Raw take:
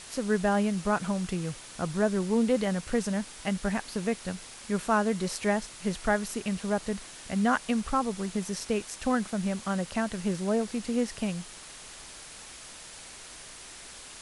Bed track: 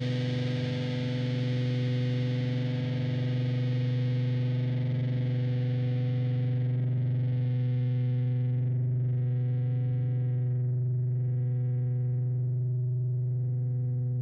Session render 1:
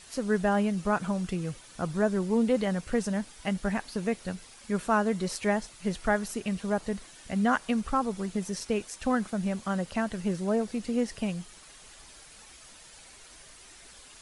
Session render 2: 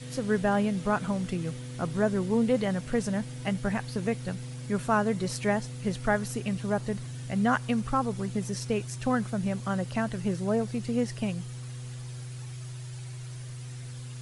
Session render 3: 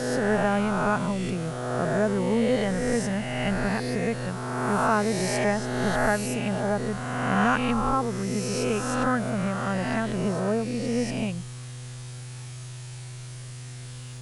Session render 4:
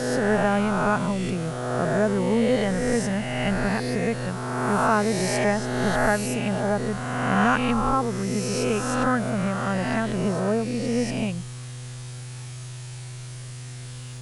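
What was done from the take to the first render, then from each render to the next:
denoiser 8 dB, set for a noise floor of -46 dBFS
add bed track -11 dB
spectral swells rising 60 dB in 1.80 s
gain +2 dB

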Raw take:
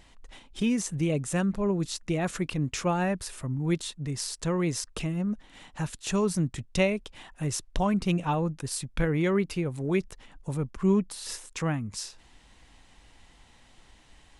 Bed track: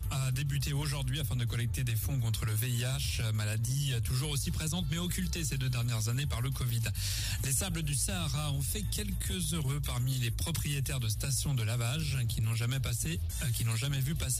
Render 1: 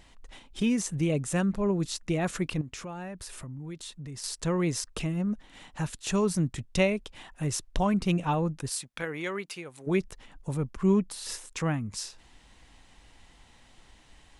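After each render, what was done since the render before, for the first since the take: 2.61–4.24 compressor 4:1, threshold -38 dBFS; 8.69–9.86 HPF 640 Hz -> 1500 Hz 6 dB/oct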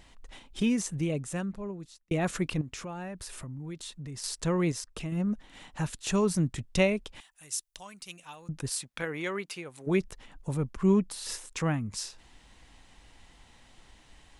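0.6–2.11 fade out; 4.72–5.12 gain -5 dB; 7.2–8.49 pre-emphasis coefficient 0.97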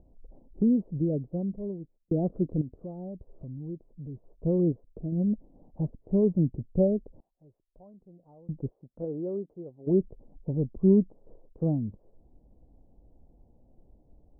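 steep low-pass 640 Hz 36 dB/oct; dynamic EQ 280 Hz, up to +4 dB, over -41 dBFS, Q 0.8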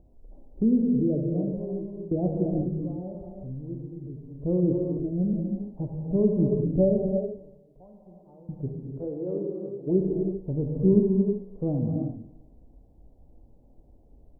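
feedback echo 0.116 s, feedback 54%, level -19 dB; non-linear reverb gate 0.41 s flat, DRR -0.5 dB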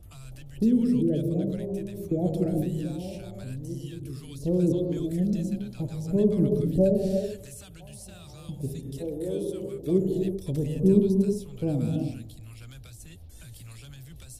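add bed track -13.5 dB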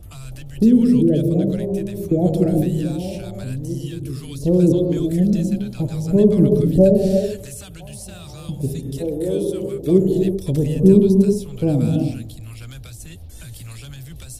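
gain +9 dB; limiter -2 dBFS, peak gain reduction 2.5 dB

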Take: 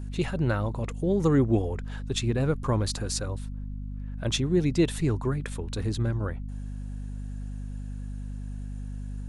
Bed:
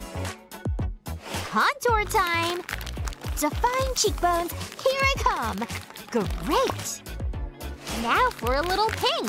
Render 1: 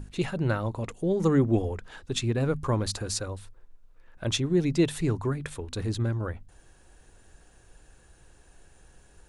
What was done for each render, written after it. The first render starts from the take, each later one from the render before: notches 50/100/150/200/250 Hz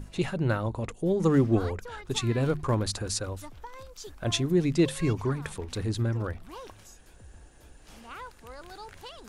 add bed -21 dB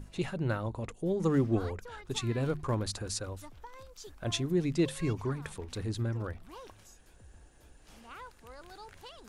gain -5 dB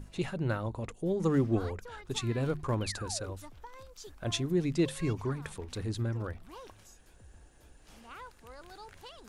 2.81–3.32 painted sound fall 310–3200 Hz -46 dBFS

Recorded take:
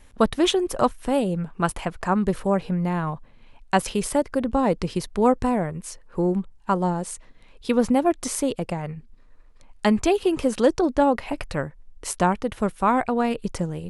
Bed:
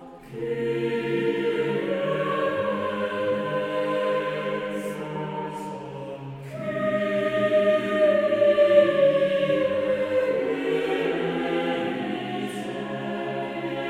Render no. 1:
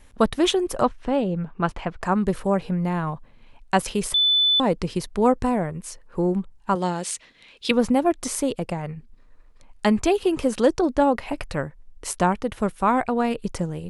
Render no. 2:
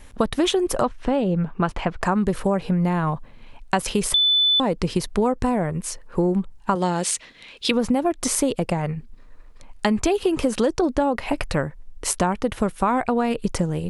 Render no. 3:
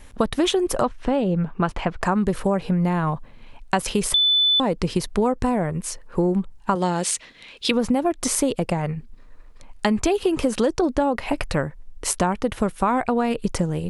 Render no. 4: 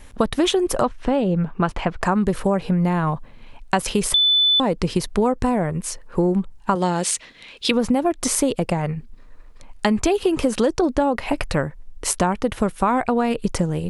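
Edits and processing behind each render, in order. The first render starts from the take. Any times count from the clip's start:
0.83–2.02 air absorption 140 m; 4.14–4.6 bleep 3500 Hz -15.5 dBFS; 6.75–7.71 weighting filter D
in parallel at +1 dB: limiter -13.5 dBFS, peak gain reduction 8.5 dB; on the sum: compressor 5:1, threshold -17 dBFS, peak gain reduction 8 dB
nothing audible
gain +1.5 dB

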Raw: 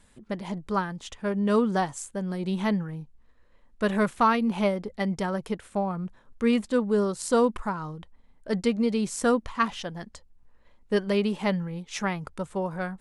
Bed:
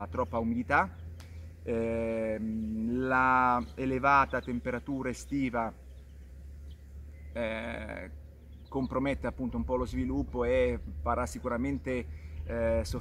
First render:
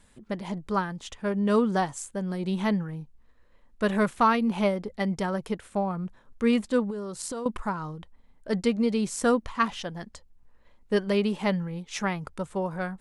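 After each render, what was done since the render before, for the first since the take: 6.9–7.46 compressor 12:1, threshold -30 dBFS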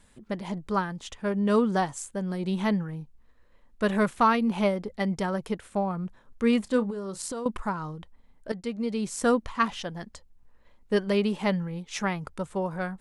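6.63–7.22 doubler 31 ms -13.5 dB; 8.52–9.3 fade in, from -12.5 dB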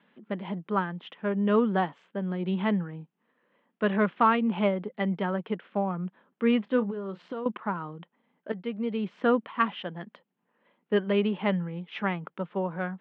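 Chebyshev band-pass 170–3200 Hz, order 4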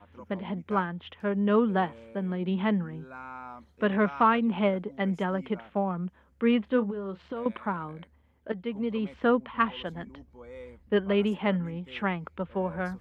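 add bed -17 dB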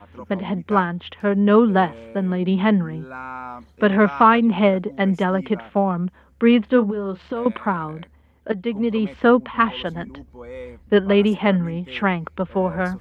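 gain +9 dB; limiter -3 dBFS, peak gain reduction 2.5 dB

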